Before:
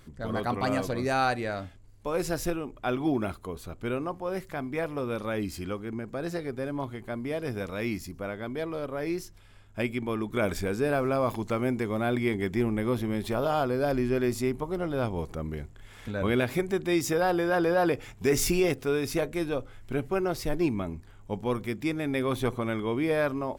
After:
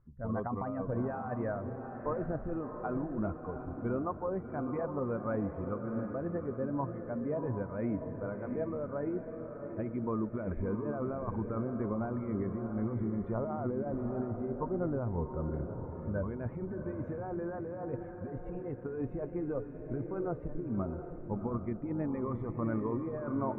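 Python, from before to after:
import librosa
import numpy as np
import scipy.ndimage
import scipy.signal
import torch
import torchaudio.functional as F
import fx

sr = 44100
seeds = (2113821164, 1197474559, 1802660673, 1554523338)

y = fx.bin_expand(x, sr, power=1.5)
y = fx.over_compress(y, sr, threshold_db=-35.0, ratio=-1.0)
y = scipy.signal.sosfilt(scipy.signal.cheby2(4, 60, 4400.0, 'lowpass', fs=sr, output='sos'), y)
y = fx.echo_diffused(y, sr, ms=710, feedback_pct=47, wet_db=-6.5)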